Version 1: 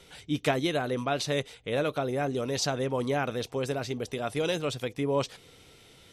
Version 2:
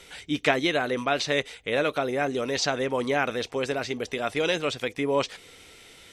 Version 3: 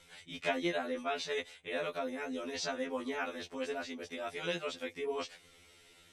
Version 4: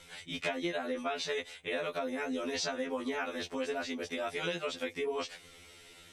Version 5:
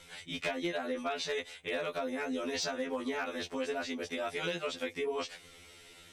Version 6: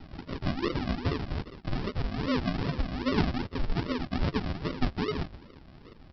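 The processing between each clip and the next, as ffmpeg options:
ffmpeg -i in.wav -filter_complex "[0:a]acrossover=split=6200[link_01][link_02];[link_02]acompressor=threshold=-59dB:ratio=4:attack=1:release=60[link_03];[link_01][link_03]amix=inputs=2:normalize=0,equalizer=frequency=125:width_type=o:width=1:gain=-8,equalizer=frequency=2000:width_type=o:width=1:gain=6,equalizer=frequency=8000:width_type=o:width=1:gain=5,volume=3dB" out.wav
ffmpeg -i in.wav -af "afftfilt=real='re*2*eq(mod(b,4),0)':imag='im*2*eq(mod(b,4),0)':win_size=2048:overlap=0.75,volume=-8.5dB" out.wav
ffmpeg -i in.wav -af "acompressor=threshold=-37dB:ratio=6,volume=6dB" out.wav
ffmpeg -i in.wav -af "volume=26dB,asoftclip=hard,volume=-26dB" out.wav
ffmpeg -i in.wav -af "aphaser=in_gain=1:out_gain=1:delay=3.7:decay=0.55:speed=0.62:type=sinusoidal,aresample=11025,acrusher=samples=19:mix=1:aa=0.000001:lfo=1:lforange=11.4:lforate=2.5,aresample=44100,volume=4dB" out.wav

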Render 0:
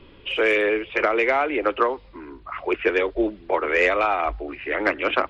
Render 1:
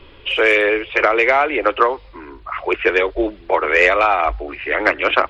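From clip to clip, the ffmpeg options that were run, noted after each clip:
ffmpeg -i in.wav -af "equalizer=frequency=210:width=0.99:gain=-9.5,volume=7dB" out.wav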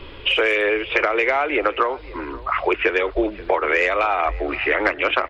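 ffmpeg -i in.wav -filter_complex "[0:a]acompressor=threshold=-22dB:ratio=6,asplit=2[link_01][link_02];[link_02]adelay=530.6,volume=-19dB,highshelf=frequency=4000:gain=-11.9[link_03];[link_01][link_03]amix=inputs=2:normalize=0,volume=5.5dB" out.wav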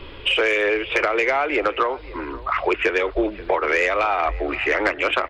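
ffmpeg -i in.wav -af "asoftclip=type=tanh:threshold=-8.5dB" out.wav

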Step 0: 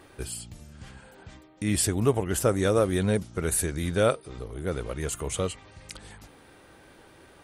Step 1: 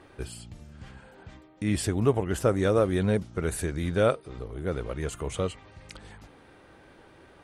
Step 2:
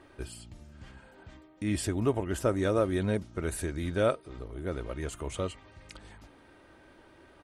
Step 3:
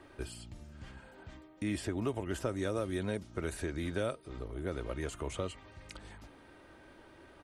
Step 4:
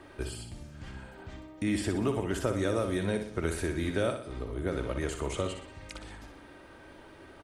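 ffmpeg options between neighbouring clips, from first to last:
ffmpeg -i in.wav -af "aemphasis=mode=reproduction:type=50kf" out.wav
ffmpeg -i in.wav -af "aecho=1:1:3.2:0.31,volume=-3.5dB" out.wav
ffmpeg -i in.wav -filter_complex "[0:a]acrossover=split=250|2500|6900[link_01][link_02][link_03][link_04];[link_01]acompressor=threshold=-39dB:ratio=4[link_05];[link_02]acompressor=threshold=-34dB:ratio=4[link_06];[link_03]acompressor=threshold=-49dB:ratio=4[link_07];[link_04]acompressor=threshold=-54dB:ratio=4[link_08];[link_05][link_06][link_07][link_08]amix=inputs=4:normalize=0" out.wav
ffmpeg -i in.wav -af "aecho=1:1:61|122|183|244|305|366:0.422|0.202|0.0972|0.0466|0.0224|0.0107,volume=4.5dB" out.wav

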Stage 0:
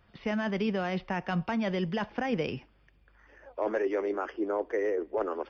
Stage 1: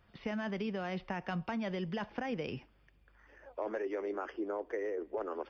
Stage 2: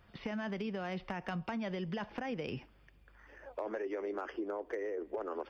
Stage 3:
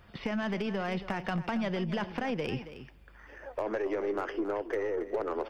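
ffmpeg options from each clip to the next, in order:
ffmpeg -i in.wav -af "acompressor=threshold=-30dB:ratio=6,volume=-3dB" out.wav
ffmpeg -i in.wav -af "acompressor=threshold=-38dB:ratio=6,volume=32.5dB,asoftclip=hard,volume=-32.5dB,volume=3.5dB" out.wav
ffmpeg -i in.wav -af "aeval=exprs='0.0376*(cos(1*acos(clip(val(0)/0.0376,-1,1)))-cos(1*PI/2))+0.00188*(cos(4*acos(clip(val(0)/0.0376,-1,1)))-cos(4*PI/2))+0.00237*(cos(5*acos(clip(val(0)/0.0376,-1,1)))-cos(5*PI/2))+0.00119*(cos(7*acos(clip(val(0)/0.0376,-1,1)))-cos(7*PI/2))':channel_layout=same,aecho=1:1:275:0.224,volume=5.5dB" out.wav

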